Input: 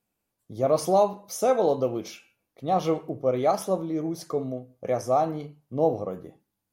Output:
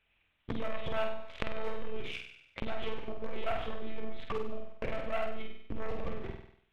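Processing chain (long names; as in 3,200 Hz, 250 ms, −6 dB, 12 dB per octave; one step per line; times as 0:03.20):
one-pitch LPC vocoder at 8 kHz 220 Hz
low-shelf EQ 190 Hz +10.5 dB
mains-hum notches 60/120/180/240/300/360/420 Hz
leveller curve on the samples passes 3
downward compressor 8 to 1, threshold −35 dBFS, peak gain reduction 25 dB
parametric band 2,500 Hz +14.5 dB 1.5 octaves
flutter between parallel walls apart 8.3 metres, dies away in 0.58 s
one half of a high-frequency compander encoder only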